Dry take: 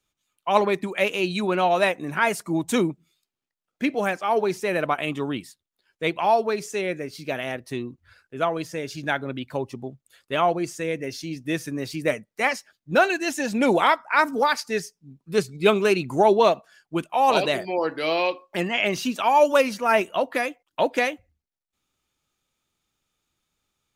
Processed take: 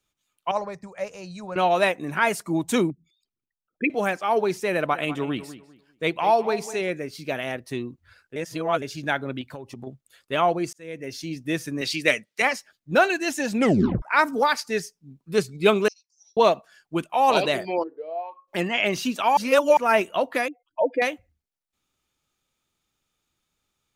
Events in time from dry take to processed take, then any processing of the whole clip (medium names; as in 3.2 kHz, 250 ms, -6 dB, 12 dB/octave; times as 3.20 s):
0.51–1.56 s: FFT filter 130 Hz 0 dB, 220 Hz -13 dB, 340 Hz -22 dB, 530 Hz -5 dB, 1.8 kHz -12 dB, 3.4 kHz -25 dB, 5 kHz 0 dB, 7.8 kHz -8 dB, 11 kHz -19 dB
2.90–3.90 s: resonances exaggerated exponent 3
4.74–6.90 s: filtered feedback delay 199 ms, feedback 26%, low-pass 3.3 kHz, level -14 dB
8.36–8.82 s: reverse
9.41–9.87 s: compression 12:1, threshold -32 dBFS
10.73–11.22 s: fade in
11.81–12.42 s: frequency weighting D
13.61 s: tape stop 0.41 s
15.88–16.37 s: Butterworth band-pass 5.5 kHz, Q 6.9
17.82–18.47 s: band-pass filter 310 Hz -> 1.3 kHz, Q 11
19.37–19.77 s: reverse
20.48–21.02 s: spectral contrast enhancement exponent 2.5